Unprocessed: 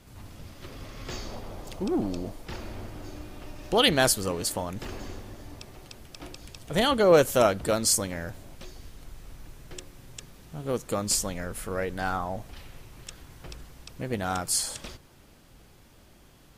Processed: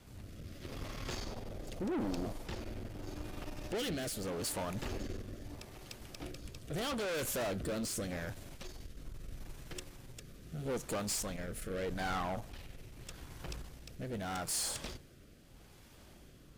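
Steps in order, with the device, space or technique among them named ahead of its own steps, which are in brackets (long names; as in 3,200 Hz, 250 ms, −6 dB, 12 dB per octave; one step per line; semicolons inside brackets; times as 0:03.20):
overdriven rotary cabinet (tube saturation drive 34 dB, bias 0.55; rotating-speaker cabinet horn 0.8 Hz)
level +2 dB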